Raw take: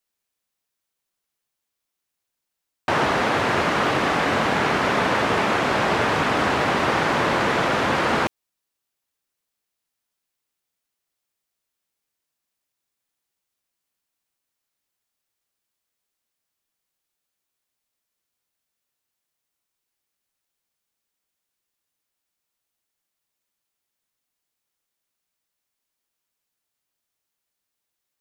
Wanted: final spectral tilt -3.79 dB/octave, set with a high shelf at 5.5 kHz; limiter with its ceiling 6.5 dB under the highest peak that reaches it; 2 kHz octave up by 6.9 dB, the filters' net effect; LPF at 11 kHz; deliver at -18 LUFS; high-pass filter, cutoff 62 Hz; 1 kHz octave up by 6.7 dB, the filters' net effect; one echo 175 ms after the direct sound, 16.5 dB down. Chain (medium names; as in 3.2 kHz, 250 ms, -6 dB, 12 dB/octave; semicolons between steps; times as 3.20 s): high-pass 62 Hz; low-pass 11 kHz; peaking EQ 1 kHz +6.5 dB; peaking EQ 2 kHz +6 dB; treble shelf 5.5 kHz +4 dB; peak limiter -8 dBFS; delay 175 ms -16.5 dB; trim -1.5 dB